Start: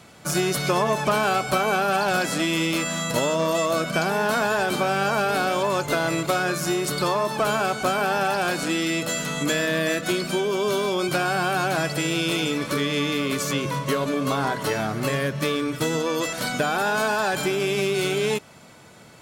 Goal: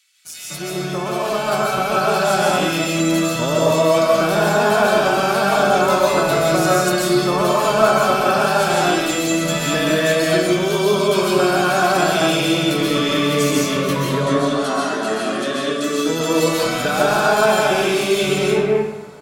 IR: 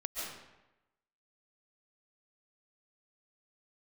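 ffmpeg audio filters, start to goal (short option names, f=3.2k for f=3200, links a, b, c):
-filter_complex "[0:a]asettb=1/sr,asplit=3[a][b][c];[a]atrim=end=14.064[d];[b]atrim=start=14.06:end=15.84,asetpts=PTS-STARTPTS,afade=t=in:d=0.004:c=qsin,afade=t=out:st=1.776:d=0.004:c=qsin,highpass=f=230:w=0.5412,highpass=f=230:w=1.3066,equalizer=f=510:t=q:w=4:g=-7,equalizer=f=900:t=q:w=4:g=-9,equalizer=f=2.2k:t=q:w=4:g=-8,equalizer=f=5.1k:t=q:w=4:g=-3,lowpass=f=9.6k:w=0.5412,lowpass=f=9.6k:w=1.3066[e];[c]atrim=start=15.836[f];[d][e]acrossfade=d=0.004:c1=hsin:c2=qsin[g];[g][f]acrossfade=d=0.004:c1=qsin:c2=hsin,dynaudnorm=f=890:g=3:m=9.5dB,acrossover=split=2100[h][i];[h]adelay=250[j];[j][i]amix=inputs=2:normalize=0[k];[1:a]atrim=start_sample=2205[l];[k][l]afir=irnorm=-1:irlink=0,volume=-3dB"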